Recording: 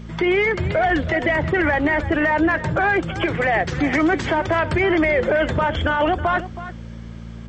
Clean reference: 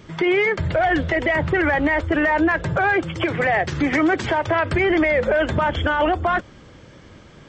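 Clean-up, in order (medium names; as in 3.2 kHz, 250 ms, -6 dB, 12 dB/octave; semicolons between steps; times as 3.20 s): de-hum 56.8 Hz, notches 4; inverse comb 322 ms -14 dB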